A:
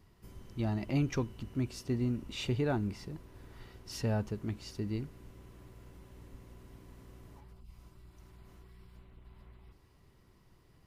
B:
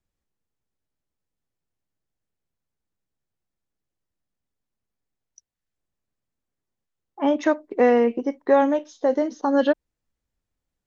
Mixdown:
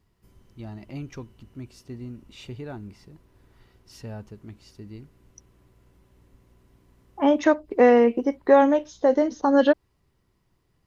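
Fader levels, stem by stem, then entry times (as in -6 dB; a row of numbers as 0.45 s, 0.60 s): -5.5 dB, +1.5 dB; 0.00 s, 0.00 s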